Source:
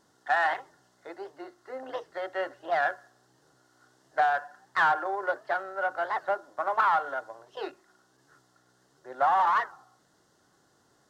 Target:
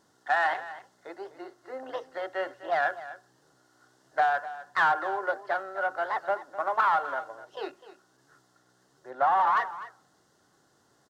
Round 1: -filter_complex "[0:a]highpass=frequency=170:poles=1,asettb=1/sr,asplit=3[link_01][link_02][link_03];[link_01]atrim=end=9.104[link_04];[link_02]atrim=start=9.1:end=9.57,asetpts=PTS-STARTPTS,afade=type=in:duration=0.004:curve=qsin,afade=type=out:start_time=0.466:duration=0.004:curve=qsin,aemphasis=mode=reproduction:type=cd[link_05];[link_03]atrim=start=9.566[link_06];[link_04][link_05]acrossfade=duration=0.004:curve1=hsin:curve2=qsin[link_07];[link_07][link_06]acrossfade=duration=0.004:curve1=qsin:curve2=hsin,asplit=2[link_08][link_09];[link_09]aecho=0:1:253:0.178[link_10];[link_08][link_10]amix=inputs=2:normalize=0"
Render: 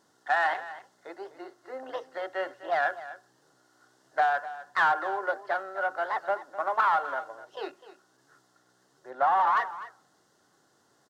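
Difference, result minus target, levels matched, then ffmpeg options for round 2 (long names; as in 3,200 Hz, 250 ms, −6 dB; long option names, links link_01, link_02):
125 Hz band −3.0 dB
-filter_complex "[0:a]highpass=frequency=43:poles=1,asettb=1/sr,asplit=3[link_01][link_02][link_03];[link_01]atrim=end=9.104[link_04];[link_02]atrim=start=9.1:end=9.57,asetpts=PTS-STARTPTS,afade=type=in:duration=0.004:curve=qsin,afade=type=out:start_time=0.466:duration=0.004:curve=qsin,aemphasis=mode=reproduction:type=cd[link_05];[link_03]atrim=start=9.566[link_06];[link_04][link_05]acrossfade=duration=0.004:curve1=hsin:curve2=qsin[link_07];[link_07][link_06]acrossfade=duration=0.004:curve1=qsin:curve2=hsin,asplit=2[link_08][link_09];[link_09]aecho=0:1:253:0.178[link_10];[link_08][link_10]amix=inputs=2:normalize=0"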